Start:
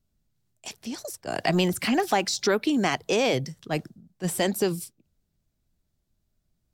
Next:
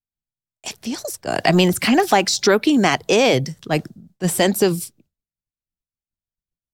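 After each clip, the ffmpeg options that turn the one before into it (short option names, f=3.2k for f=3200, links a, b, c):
-af "agate=range=-33dB:threshold=-54dB:ratio=3:detection=peak,volume=8dB"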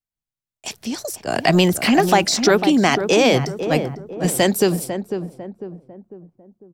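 -filter_complex "[0:a]asplit=2[a][b];[b]adelay=499,lowpass=f=950:p=1,volume=-7.5dB,asplit=2[c][d];[d]adelay=499,lowpass=f=950:p=1,volume=0.46,asplit=2[e][f];[f]adelay=499,lowpass=f=950:p=1,volume=0.46,asplit=2[g][h];[h]adelay=499,lowpass=f=950:p=1,volume=0.46,asplit=2[i][j];[j]adelay=499,lowpass=f=950:p=1,volume=0.46[k];[a][c][e][g][i][k]amix=inputs=6:normalize=0"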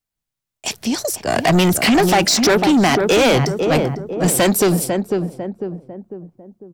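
-af "asoftclip=type=tanh:threshold=-17dB,volume=7dB"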